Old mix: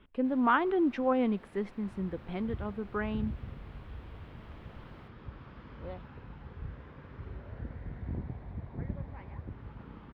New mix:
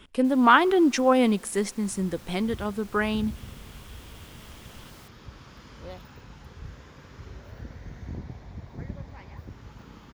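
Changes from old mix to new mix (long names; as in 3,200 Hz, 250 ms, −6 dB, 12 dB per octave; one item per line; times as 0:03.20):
speech +6.5 dB
master: remove high-frequency loss of the air 480 metres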